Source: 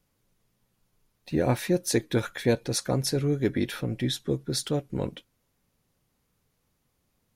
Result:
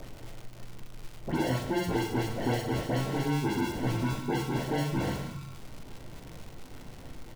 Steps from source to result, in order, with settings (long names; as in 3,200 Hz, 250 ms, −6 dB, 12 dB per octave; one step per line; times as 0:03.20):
rectangular room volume 180 cubic metres, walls furnished, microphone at 3 metres
downward compressor 4 to 1, threshold −29 dBFS, peak gain reduction 15.5 dB
decimation without filtering 36×
upward compression, threshold −26 dBFS
all-pass dispersion highs, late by 80 ms, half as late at 2,400 Hz
surface crackle 250 per second −35 dBFS
high-shelf EQ 5,300 Hz −6 dB
notch filter 1,700 Hz, Q 15
double-tracking delay 42 ms −11 dB